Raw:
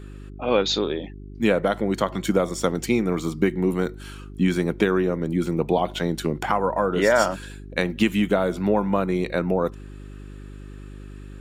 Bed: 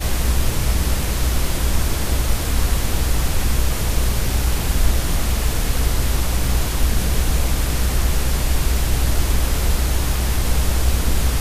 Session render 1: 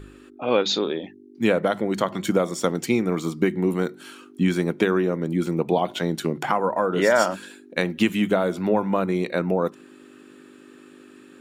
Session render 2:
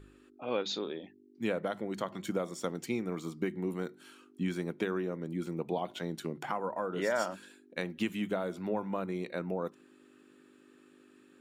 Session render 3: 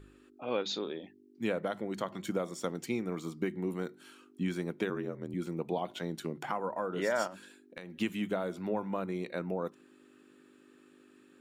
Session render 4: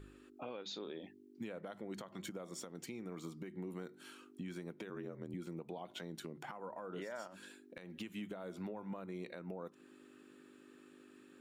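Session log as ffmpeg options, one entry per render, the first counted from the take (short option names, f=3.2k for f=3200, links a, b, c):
-af "bandreject=f=50:t=h:w=4,bandreject=f=100:t=h:w=4,bandreject=f=150:t=h:w=4,bandreject=f=200:t=h:w=4"
-af "volume=-12.5dB"
-filter_complex "[0:a]asettb=1/sr,asplit=3[a][b][c];[a]atrim=end=4.894[d];[b]atrim=start=4.89:end=5.34,asetpts=PTS-STARTPTS,afade=t=in:d=0.004:c=qsin,afade=t=out:st=0.446:d=0.004:c=qsin,aeval=exprs='val(0)*sin(2*PI*40*n/s)':c=same[e];[c]atrim=start=5.336[f];[d][e]acrossfade=d=0.004:c1=hsin:c2=qsin[g];[g][f]acrossfade=d=0.004:c1=qsin:c2=hsin,asettb=1/sr,asplit=3[h][i][j];[h]atrim=end=7.274[k];[i]atrim=start=7.27:end=7.96,asetpts=PTS-STARTPTS,afade=t=in:d=0.004:c=qsin,afade=t=out:st=0.686:d=0.004:c=qsin,acompressor=threshold=-40dB:ratio=10:attack=3.2:release=140:knee=1:detection=peak[l];[j]atrim=start=7.956[m];[k][l]acrossfade=d=0.004:c1=hsin:c2=qsin[n];[n][m]acrossfade=d=0.004:c1=qsin:c2=hsin"
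-af "acompressor=threshold=-37dB:ratio=6,alimiter=level_in=11dB:limit=-24dB:level=0:latency=1:release=249,volume=-11dB"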